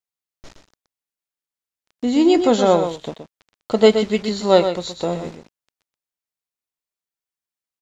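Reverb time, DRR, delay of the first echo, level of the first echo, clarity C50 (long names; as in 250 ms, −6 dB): no reverb audible, no reverb audible, 122 ms, −8.5 dB, no reverb audible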